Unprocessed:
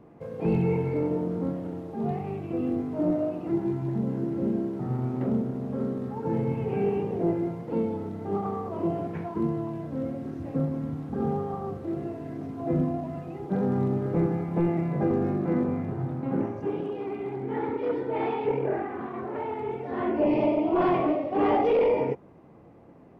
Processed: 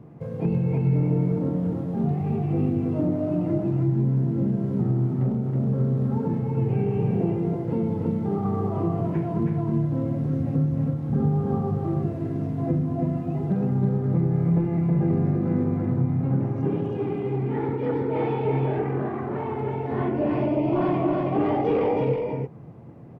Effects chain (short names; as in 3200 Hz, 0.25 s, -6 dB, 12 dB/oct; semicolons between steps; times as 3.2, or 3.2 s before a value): bell 130 Hz +13.5 dB 1.3 oct; compressor, threshold -21 dBFS, peak gain reduction 9.5 dB; on a send: echo 0.322 s -3 dB